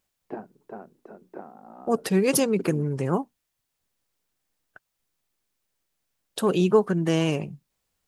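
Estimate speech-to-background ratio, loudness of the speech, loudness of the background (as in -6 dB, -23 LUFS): 19.0 dB, -24.0 LUFS, -43.0 LUFS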